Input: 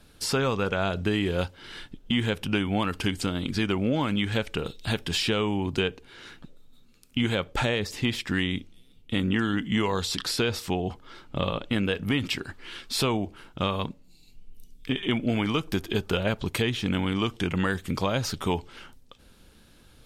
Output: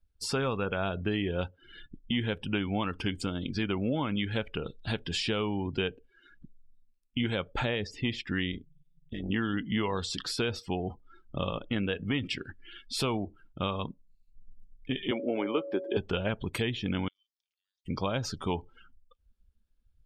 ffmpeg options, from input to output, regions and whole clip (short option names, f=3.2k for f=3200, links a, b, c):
-filter_complex "[0:a]asettb=1/sr,asplit=3[a][b][c];[a]atrim=end=8.524[d];[b]atrim=start=8.52:end=9.3,asetpts=PTS-STARTPTS,afade=t=in:d=0.004:c=qsin,afade=t=out:st=0.776:d=0.004:c=qsin,acompressor=mode=upward:threshold=-43dB:ratio=2.5:attack=3.2:release=140:knee=2.83:detection=peak,asoftclip=type=hard:threshold=-23dB,tremolo=f=150:d=0.857[e];[c]atrim=start=9.296[f];[d][e]acrossfade=d=0.004:c1=hsin:c2=qsin[g];[g][f]acrossfade=d=0.004:c1=qsin:c2=hsin,asettb=1/sr,asplit=3[h][i][j];[h]atrim=end=15.114[k];[i]atrim=start=15.11:end=15.97,asetpts=PTS-STARTPTS,afade=t=in:d=0.004:c=qsin,afade=t=out:st=0.856:d=0.004:c=qsin,highshelf=f=3.1k:g=-9.5,aeval=exprs='val(0)+0.0158*sin(2*PI*560*n/s)':c=same,highpass=f=370:t=q:w=2[l];[j]atrim=start=15.966[m];[k][l]acrossfade=d=0.004:c1=hsin:c2=qsin[n];[n][m]acrossfade=d=0.004:c1=qsin:c2=hsin,asettb=1/sr,asplit=3[o][p][q];[o]atrim=end=17.084[r];[p]atrim=start=17.08:end=17.86,asetpts=PTS-STARTPTS,afade=t=in:d=0.004:c=qsin,afade=t=out:st=0.776:d=0.004:c=qsin,asuperpass=centerf=4900:order=4:qfactor=2.3,acompressor=threshold=-50dB:ratio=6:attack=3.2:release=140:knee=1:detection=peak[s];[q]atrim=start=17.856[t];[r][s]acrossfade=d=0.004:c1=hsin:c2=qsin[u];[u][t]acrossfade=d=0.004:c1=qsin:c2=hsin,bandreject=f=3.9k:w=29,afftdn=nr=29:nf=-39,volume=-4.5dB"